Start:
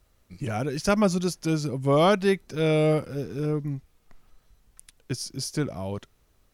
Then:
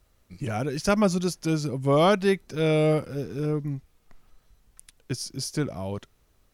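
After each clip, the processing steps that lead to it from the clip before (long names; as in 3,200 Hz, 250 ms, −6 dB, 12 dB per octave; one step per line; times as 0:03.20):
no processing that can be heard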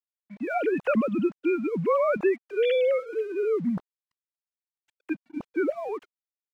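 three sine waves on the formant tracks
downward compressor 10 to 1, threshold −23 dBFS, peak gain reduction 11 dB
dead-zone distortion −58.5 dBFS
level +3.5 dB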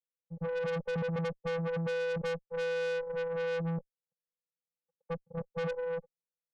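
channel vocoder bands 4, square 166 Hz
low-pass with resonance 560 Hz, resonance Q 4.9
tube saturation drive 28 dB, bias 0.3
level −3.5 dB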